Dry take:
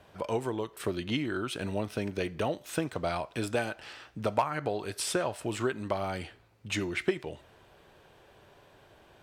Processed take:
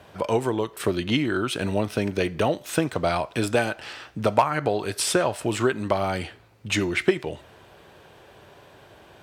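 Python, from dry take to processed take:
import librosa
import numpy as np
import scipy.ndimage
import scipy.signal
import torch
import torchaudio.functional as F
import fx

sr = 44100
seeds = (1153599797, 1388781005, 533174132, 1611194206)

y = scipy.signal.sosfilt(scipy.signal.butter(2, 55.0, 'highpass', fs=sr, output='sos'), x)
y = y * 10.0 ** (8.0 / 20.0)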